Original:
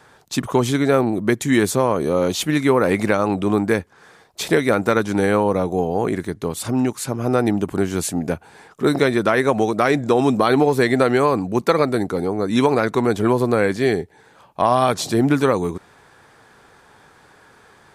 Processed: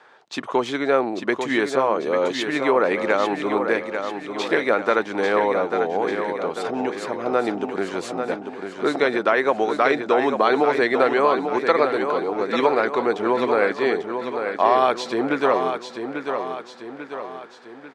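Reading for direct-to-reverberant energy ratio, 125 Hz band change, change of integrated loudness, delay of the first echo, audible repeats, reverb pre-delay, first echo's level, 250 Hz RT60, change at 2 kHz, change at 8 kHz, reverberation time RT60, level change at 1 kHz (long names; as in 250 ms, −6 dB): no reverb audible, −17.0 dB, −2.5 dB, 843 ms, 5, no reverb audible, −7.0 dB, no reverb audible, +0.5 dB, below −10 dB, no reverb audible, +0.5 dB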